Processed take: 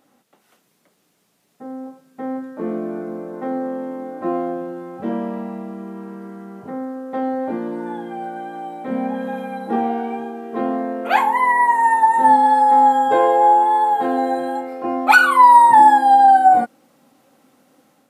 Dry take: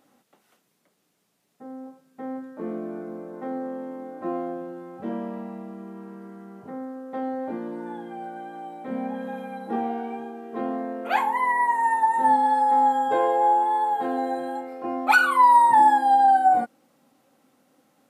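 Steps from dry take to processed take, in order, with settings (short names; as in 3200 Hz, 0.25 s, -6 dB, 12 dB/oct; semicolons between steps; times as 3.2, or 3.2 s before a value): AGC gain up to 4.5 dB; gain +2.5 dB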